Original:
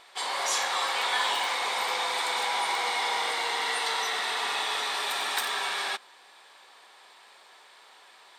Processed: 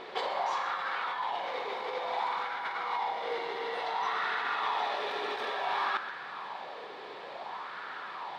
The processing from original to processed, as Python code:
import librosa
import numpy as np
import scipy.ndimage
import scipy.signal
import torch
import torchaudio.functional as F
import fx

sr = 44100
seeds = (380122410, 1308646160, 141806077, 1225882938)

p1 = fx.air_absorb(x, sr, metres=260.0)
p2 = fx.quant_float(p1, sr, bits=6)
p3 = fx.peak_eq(p2, sr, hz=2100.0, db=-2.5, octaves=2.7)
p4 = fx.over_compress(p3, sr, threshold_db=-42.0, ratio=-1.0)
p5 = fx.dmg_noise_band(p4, sr, seeds[0], low_hz=130.0, high_hz=560.0, level_db=-67.0)
p6 = p5 + fx.echo_single(p5, sr, ms=127, db=-12.5, dry=0)
p7 = fx.bell_lfo(p6, sr, hz=0.57, low_hz=410.0, high_hz=1500.0, db=12)
y = p7 * 10.0 ** (3.5 / 20.0)